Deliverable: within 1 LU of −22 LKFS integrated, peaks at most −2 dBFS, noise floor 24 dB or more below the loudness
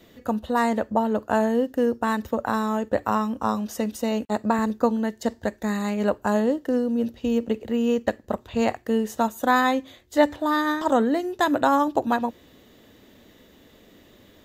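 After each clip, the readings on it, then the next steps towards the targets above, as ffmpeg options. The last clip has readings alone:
integrated loudness −24.0 LKFS; sample peak −5.5 dBFS; target loudness −22.0 LKFS
→ -af "volume=2dB"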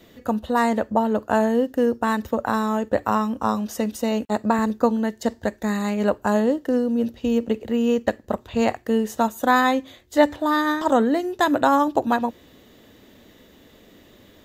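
integrated loudness −22.0 LKFS; sample peak −3.5 dBFS; background noise floor −52 dBFS

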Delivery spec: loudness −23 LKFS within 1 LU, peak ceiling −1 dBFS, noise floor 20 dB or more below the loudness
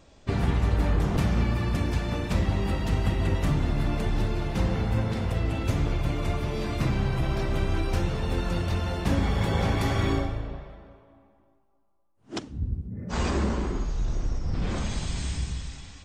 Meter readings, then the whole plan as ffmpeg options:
integrated loudness −28.0 LKFS; sample peak −12.0 dBFS; target loudness −23.0 LKFS
→ -af "volume=5dB"

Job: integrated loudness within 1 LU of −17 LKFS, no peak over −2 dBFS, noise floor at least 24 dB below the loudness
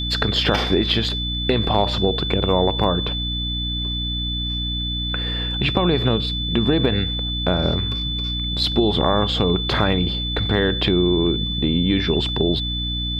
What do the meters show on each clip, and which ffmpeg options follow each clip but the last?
mains hum 60 Hz; hum harmonics up to 300 Hz; level of the hum −24 dBFS; interfering tone 3,500 Hz; level of the tone −25 dBFS; integrated loudness −20.5 LKFS; sample peak −3.5 dBFS; target loudness −17.0 LKFS
→ -af "bandreject=frequency=60:width_type=h:width=6,bandreject=frequency=120:width_type=h:width=6,bandreject=frequency=180:width_type=h:width=6,bandreject=frequency=240:width_type=h:width=6,bandreject=frequency=300:width_type=h:width=6"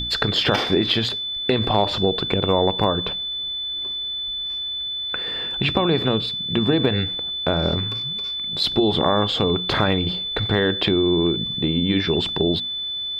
mains hum none found; interfering tone 3,500 Hz; level of the tone −25 dBFS
→ -af "bandreject=frequency=3500:width=30"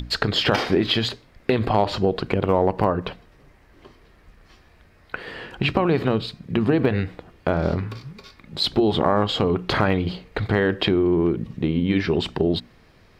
interfering tone none found; integrated loudness −22.5 LKFS; sample peak −5.0 dBFS; target loudness −17.0 LKFS
→ -af "volume=5.5dB,alimiter=limit=-2dB:level=0:latency=1"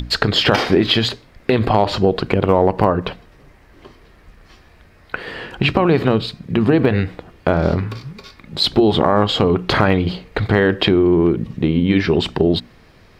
integrated loudness −17.0 LKFS; sample peak −2.0 dBFS; background noise floor −48 dBFS

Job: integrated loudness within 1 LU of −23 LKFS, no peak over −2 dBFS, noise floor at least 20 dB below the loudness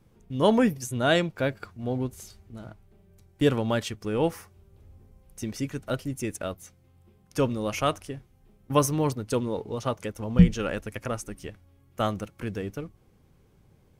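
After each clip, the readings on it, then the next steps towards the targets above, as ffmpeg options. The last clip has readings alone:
integrated loudness −27.5 LKFS; sample peak −5.0 dBFS; target loudness −23.0 LKFS
→ -af "volume=4.5dB,alimiter=limit=-2dB:level=0:latency=1"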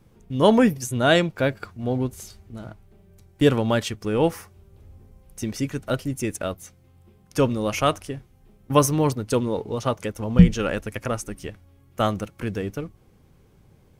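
integrated loudness −23.0 LKFS; sample peak −2.0 dBFS; background noise floor −56 dBFS

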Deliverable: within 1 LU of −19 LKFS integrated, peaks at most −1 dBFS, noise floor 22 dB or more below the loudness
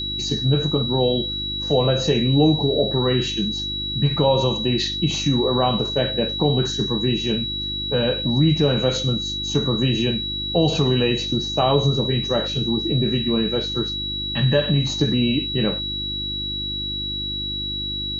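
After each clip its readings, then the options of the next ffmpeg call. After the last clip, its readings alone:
mains hum 50 Hz; hum harmonics up to 350 Hz; level of the hum −32 dBFS; interfering tone 3,900 Hz; level of the tone −25 dBFS; integrated loudness −20.5 LKFS; sample peak −5.0 dBFS; target loudness −19.0 LKFS
→ -af "bandreject=frequency=50:width_type=h:width=4,bandreject=frequency=100:width_type=h:width=4,bandreject=frequency=150:width_type=h:width=4,bandreject=frequency=200:width_type=h:width=4,bandreject=frequency=250:width_type=h:width=4,bandreject=frequency=300:width_type=h:width=4,bandreject=frequency=350:width_type=h:width=4"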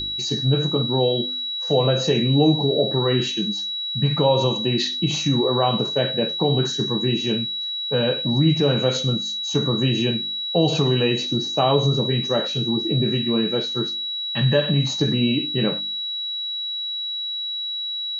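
mains hum none found; interfering tone 3,900 Hz; level of the tone −25 dBFS
→ -af "bandreject=frequency=3900:width=30"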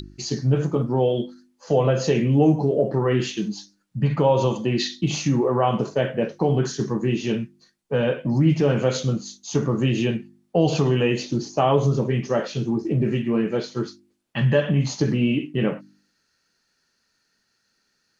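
interfering tone none found; integrated loudness −22.5 LKFS; sample peak −6.0 dBFS; target loudness −19.0 LKFS
→ -af "volume=3.5dB"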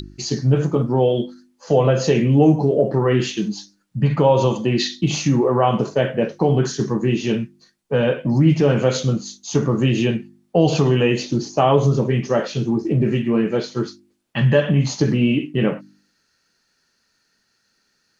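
integrated loudness −19.0 LKFS; sample peak −2.5 dBFS; background noise floor −67 dBFS

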